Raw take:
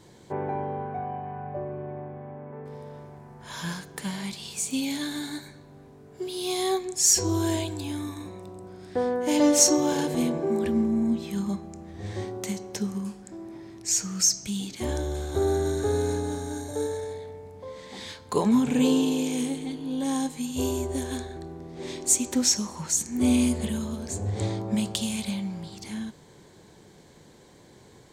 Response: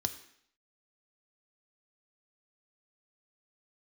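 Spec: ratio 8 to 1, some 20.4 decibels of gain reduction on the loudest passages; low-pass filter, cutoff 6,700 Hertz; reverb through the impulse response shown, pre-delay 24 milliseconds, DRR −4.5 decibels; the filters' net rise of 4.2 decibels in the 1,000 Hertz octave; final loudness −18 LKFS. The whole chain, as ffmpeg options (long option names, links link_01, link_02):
-filter_complex "[0:a]lowpass=6700,equalizer=frequency=1000:width_type=o:gain=5.5,acompressor=threshold=-38dB:ratio=8,asplit=2[link_01][link_02];[1:a]atrim=start_sample=2205,adelay=24[link_03];[link_02][link_03]afir=irnorm=-1:irlink=0,volume=3dB[link_04];[link_01][link_04]amix=inputs=2:normalize=0,volume=14.5dB"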